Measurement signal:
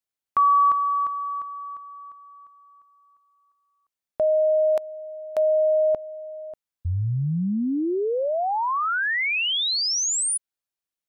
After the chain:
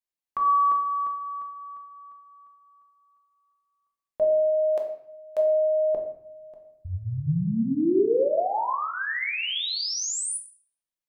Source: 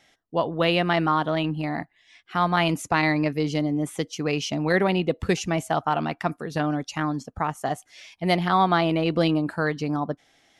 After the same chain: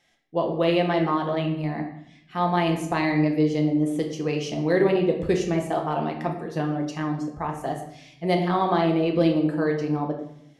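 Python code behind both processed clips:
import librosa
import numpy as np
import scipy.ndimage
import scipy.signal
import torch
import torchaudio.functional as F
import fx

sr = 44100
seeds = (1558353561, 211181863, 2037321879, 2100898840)

y = fx.notch(x, sr, hz=1400.0, q=13.0)
y = fx.room_shoebox(y, sr, seeds[0], volume_m3=230.0, walls='mixed', distance_m=0.87)
y = fx.dynamic_eq(y, sr, hz=420.0, q=1.1, threshold_db=-35.0, ratio=4.0, max_db=8)
y = F.gain(torch.from_numpy(y), -7.0).numpy()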